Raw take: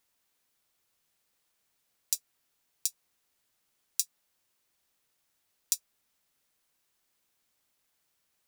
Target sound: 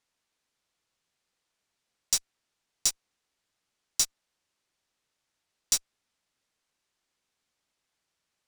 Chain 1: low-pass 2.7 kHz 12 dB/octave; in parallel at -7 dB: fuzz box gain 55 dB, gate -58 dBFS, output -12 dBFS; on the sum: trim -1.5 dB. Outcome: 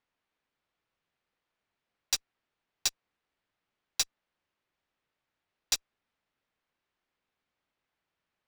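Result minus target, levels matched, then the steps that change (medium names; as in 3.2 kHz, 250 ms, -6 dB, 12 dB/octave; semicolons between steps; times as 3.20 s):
2 kHz band +7.5 dB
change: low-pass 7.4 kHz 12 dB/octave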